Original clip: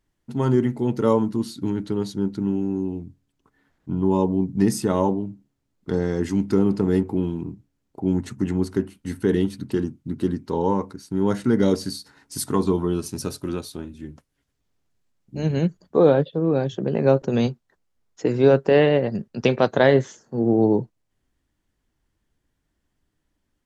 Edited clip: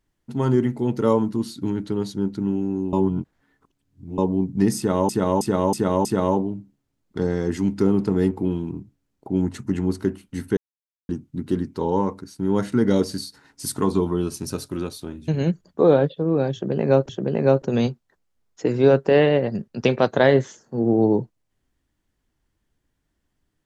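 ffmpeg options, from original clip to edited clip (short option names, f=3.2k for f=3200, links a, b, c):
-filter_complex "[0:a]asplit=11[a][b][c][d][e][f][g][h][i][j][k];[a]atrim=end=2.932[l];[b]atrim=start=2.928:end=4.182,asetpts=PTS-STARTPTS,areverse[m];[c]atrim=start=4.178:end=5.092[n];[d]atrim=start=4.768:end=5.092[o];[e]atrim=start=4.768:end=5.092[p];[f]atrim=start=4.768:end=5.092[q];[g]atrim=start=4.768:end=9.29,asetpts=PTS-STARTPTS,afade=t=out:st=4.518:d=0.004:c=hsin[r];[h]atrim=start=9.29:end=9.81,asetpts=PTS-STARTPTS,volume=0[s];[i]atrim=start=9.81:end=14.002,asetpts=PTS-STARTPTS,afade=t=in:d=0.004:c=hsin[t];[j]atrim=start=15.438:end=17.252[u];[k]atrim=start=16.688[v];[l][m]acrossfade=d=0.004:c1=hsin:c2=hsin[w];[w][n]acrossfade=d=0.004:c1=hsin:c2=hsin[x];[x][o]acrossfade=d=0.004:c1=hsin:c2=hsin[y];[y][p]acrossfade=d=0.004:c1=hsin:c2=hsin[z];[z][q]acrossfade=d=0.004:c1=hsin:c2=hsin[aa];[r][s][t]concat=n=3:v=0:a=1[ab];[aa][ab]acrossfade=d=0.004:c1=hsin:c2=hsin[ac];[ac][u]acrossfade=d=0.004:c1=hsin:c2=hsin[ad];[ad][v]acrossfade=d=0.004:c1=hsin:c2=hsin"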